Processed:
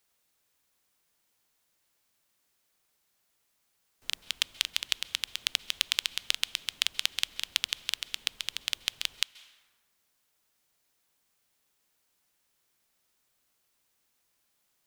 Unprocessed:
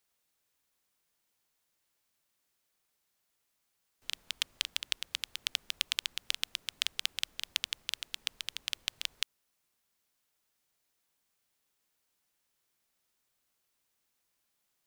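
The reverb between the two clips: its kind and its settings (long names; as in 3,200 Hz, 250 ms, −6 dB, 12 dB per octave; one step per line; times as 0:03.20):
dense smooth reverb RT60 1.5 s, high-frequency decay 0.55×, pre-delay 120 ms, DRR 19 dB
level +4.5 dB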